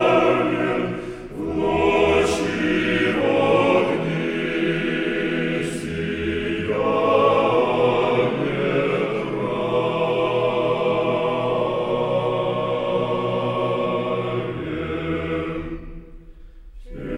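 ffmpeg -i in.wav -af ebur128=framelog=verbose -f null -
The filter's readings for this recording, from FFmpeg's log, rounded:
Integrated loudness:
  I:         -21.2 LUFS
  Threshold: -31.5 LUFS
Loudness range:
  LRA:         4.5 LU
  Threshold: -41.3 LUFS
  LRA low:   -24.1 LUFS
  LRA high:  -19.6 LUFS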